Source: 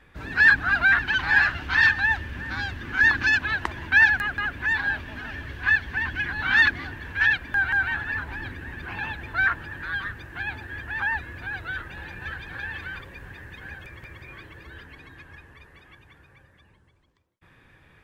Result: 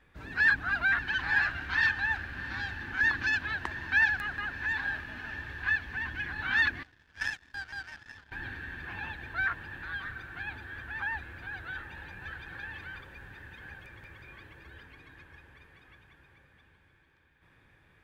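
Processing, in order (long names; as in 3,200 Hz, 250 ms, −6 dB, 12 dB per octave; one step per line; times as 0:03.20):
feedback delay with all-pass diffusion 751 ms, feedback 63%, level −13.5 dB
0:06.83–0:08.32: power curve on the samples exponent 2
level −8 dB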